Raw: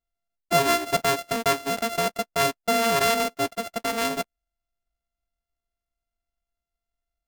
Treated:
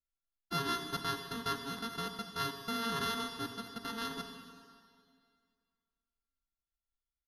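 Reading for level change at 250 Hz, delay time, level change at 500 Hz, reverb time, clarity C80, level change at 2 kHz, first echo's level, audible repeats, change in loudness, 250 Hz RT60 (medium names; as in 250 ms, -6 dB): -10.0 dB, 155 ms, -19.5 dB, 2.1 s, 7.5 dB, -14.0 dB, -18.5 dB, 1, -13.5 dB, 2.2 s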